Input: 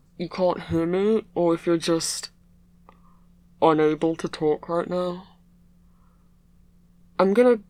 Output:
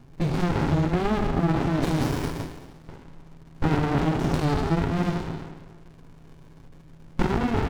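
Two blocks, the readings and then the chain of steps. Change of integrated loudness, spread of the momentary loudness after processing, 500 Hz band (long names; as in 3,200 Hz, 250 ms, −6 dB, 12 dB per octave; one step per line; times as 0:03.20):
−2.0 dB, 12 LU, −8.0 dB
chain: peak hold with a decay on every bin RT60 1.44 s
low-pass that shuts in the quiet parts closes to 2,400 Hz, open at −17.5 dBFS
hum removal 98.04 Hz, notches 4
surface crackle 450 per second −45 dBFS
in parallel at 0 dB: downward compressor, threshold −27 dBFS, peak gain reduction 15.5 dB
on the sum: brickwall limiter −10.5 dBFS, peak gain reduction 9.5 dB
comb filter 7.2 ms, depth 48%
frequency shifter −14 Hz
downsampling to 16,000 Hz
windowed peak hold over 65 samples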